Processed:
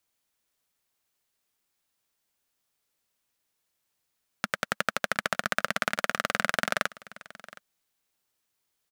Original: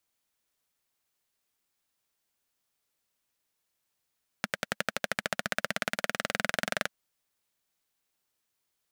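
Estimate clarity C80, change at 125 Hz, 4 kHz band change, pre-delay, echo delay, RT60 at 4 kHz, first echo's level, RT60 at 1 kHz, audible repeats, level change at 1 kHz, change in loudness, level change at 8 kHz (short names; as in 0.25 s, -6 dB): none, +1.5 dB, +2.0 dB, none, 0.718 s, none, -20.0 dB, none, 1, +6.0 dB, +3.5 dB, +1.5 dB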